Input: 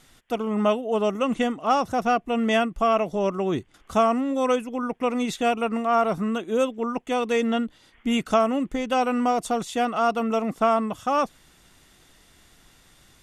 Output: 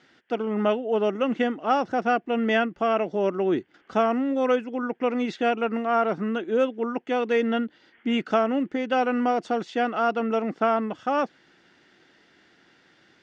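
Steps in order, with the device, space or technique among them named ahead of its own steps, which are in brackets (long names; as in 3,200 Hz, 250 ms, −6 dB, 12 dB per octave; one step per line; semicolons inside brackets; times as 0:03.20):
kitchen radio (loudspeaker in its box 220–4,500 Hz, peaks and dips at 340 Hz +4 dB, 660 Hz −3 dB, 1,100 Hz −8 dB, 1,600 Hz +5 dB, 2,500 Hz −3 dB, 3,700 Hz −7 dB)
level +1 dB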